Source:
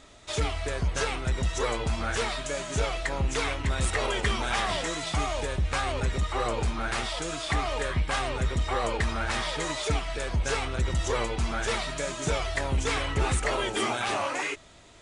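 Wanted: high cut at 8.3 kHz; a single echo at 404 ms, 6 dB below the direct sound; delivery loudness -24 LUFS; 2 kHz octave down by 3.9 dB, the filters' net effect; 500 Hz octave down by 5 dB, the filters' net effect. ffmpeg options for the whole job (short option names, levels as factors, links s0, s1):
-af "lowpass=8300,equalizer=f=500:t=o:g=-6,equalizer=f=2000:t=o:g=-4.5,aecho=1:1:404:0.501,volume=2"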